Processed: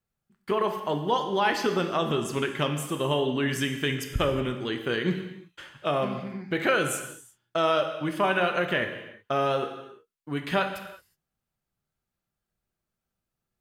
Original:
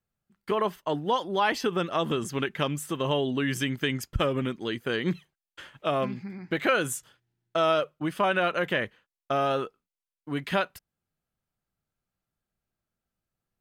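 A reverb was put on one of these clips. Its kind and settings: non-linear reverb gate 0.39 s falling, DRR 5 dB

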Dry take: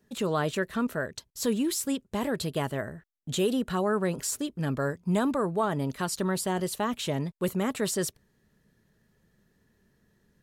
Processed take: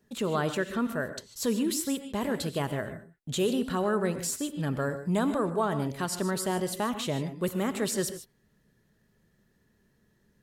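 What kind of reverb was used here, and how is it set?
non-linear reverb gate 0.17 s rising, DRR 9.5 dB; gain -1 dB

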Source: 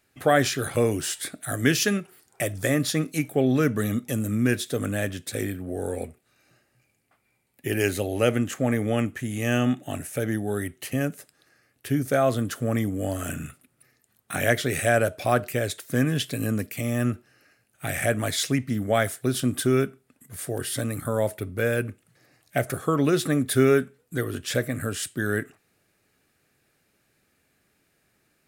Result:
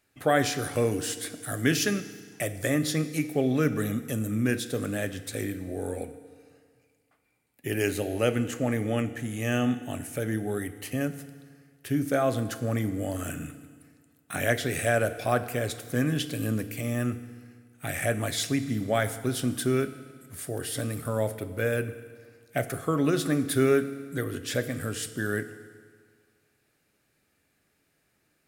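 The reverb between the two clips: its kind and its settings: FDN reverb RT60 1.8 s, low-frequency decay 1×, high-frequency decay 0.9×, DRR 11 dB; gain -3.5 dB

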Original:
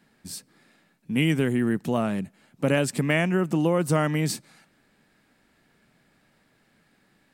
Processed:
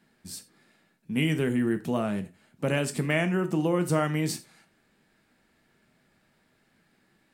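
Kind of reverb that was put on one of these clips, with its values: non-linear reverb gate 0.12 s falling, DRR 8 dB; gain -3.5 dB

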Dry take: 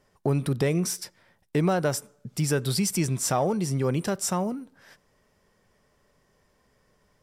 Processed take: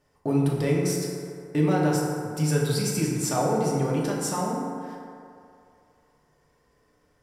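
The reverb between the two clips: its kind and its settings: FDN reverb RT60 2.5 s, low-frequency decay 0.75×, high-frequency decay 0.4×, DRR -4 dB; gain -5 dB

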